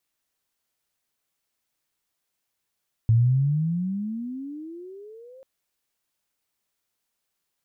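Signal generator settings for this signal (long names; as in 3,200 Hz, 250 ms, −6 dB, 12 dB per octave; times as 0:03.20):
pitch glide with a swell sine, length 2.34 s, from 110 Hz, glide +27.5 semitones, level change −30.5 dB, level −14 dB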